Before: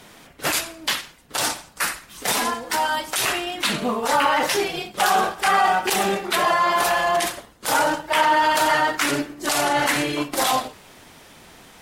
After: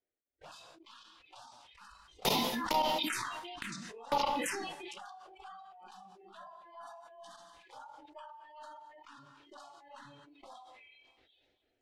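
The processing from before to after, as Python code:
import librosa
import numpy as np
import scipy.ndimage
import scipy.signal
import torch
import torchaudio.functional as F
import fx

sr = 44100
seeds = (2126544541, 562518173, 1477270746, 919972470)

y = np.where(x < 0.0, 10.0 ** (-3.0 / 20.0) * x, x)
y = fx.doppler_pass(y, sr, speed_mps=7, closest_m=8.9, pass_at_s=2.63)
y = fx.low_shelf(y, sr, hz=72.0, db=-7.0)
y = fx.level_steps(y, sr, step_db=23)
y = fx.high_shelf(y, sr, hz=4300.0, db=-4.0)
y = fx.echo_stepped(y, sr, ms=736, hz=3100.0, octaves=0.7, feedback_pct=70, wet_db=-7.0)
y = y * (1.0 - 1.0 / 2.0 + 1.0 / 2.0 * np.cos(2.0 * np.pi * 2.2 * (np.arange(len(y)) / sr)))
y = fx.env_phaser(y, sr, low_hz=170.0, high_hz=1600.0, full_db=-35.0)
y = fx.noise_reduce_blind(y, sr, reduce_db=19)
y = fx.env_lowpass(y, sr, base_hz=1700.0, full_db=-40.5)
y = fx.rev_double_slope(y, sr, seeds[0], early_s=0.29, late_s=1.5, knee_db=-27, drr_db=15.5)
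y = fx.sustainer(y, sr, db_per_s=24.0)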